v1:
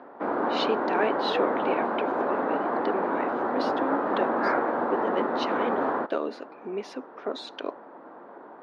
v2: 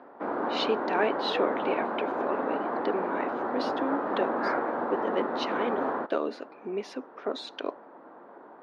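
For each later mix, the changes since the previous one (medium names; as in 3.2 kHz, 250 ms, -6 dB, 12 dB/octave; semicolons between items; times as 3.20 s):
background -3.5 dB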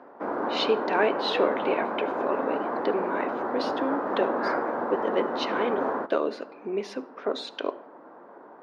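background: add resonant high shelf 5.7 kHz +12.5 dB, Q 1.5; reverb: on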